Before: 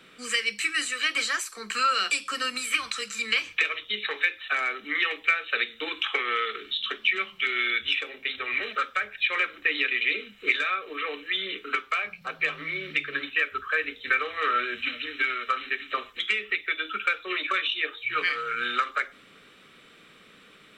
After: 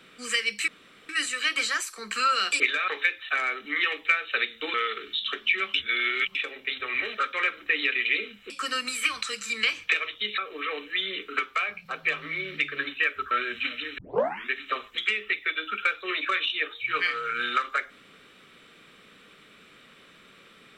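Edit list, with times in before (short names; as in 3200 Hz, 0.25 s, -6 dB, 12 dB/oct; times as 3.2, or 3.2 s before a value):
0.68 insert room tone 0.41 s
2.19–4.07 swap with 10.46–10.74
5.93–6.32 cut
7.32–7.93 reverse
8.91–9.29 cut
13.67–14.53 cut
15.2 tape start 0.53 s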